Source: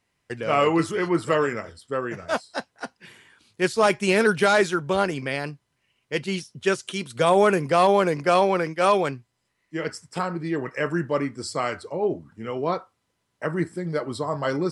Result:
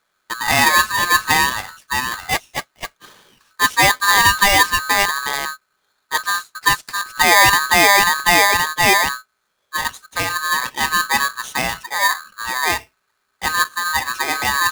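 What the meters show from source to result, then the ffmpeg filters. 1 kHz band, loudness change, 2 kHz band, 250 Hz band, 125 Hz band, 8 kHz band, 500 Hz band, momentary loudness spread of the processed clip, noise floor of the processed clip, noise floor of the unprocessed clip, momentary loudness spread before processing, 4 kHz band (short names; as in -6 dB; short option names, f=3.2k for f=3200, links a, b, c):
+8.5 dB, +8.0 dB, +13.5 dB, -4.5 dB, -1.5 dB, +18.0 dB, -5.5 dB, 13 LU, -70 dBFS, -75 dBFS, 13 LU, +15.0 dB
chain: -af "tiltshelf=f=970:g=4,aeval=exprs='val(0)*sgn(sin(2*PI*1400*n/s))':c=same,volume=4dB"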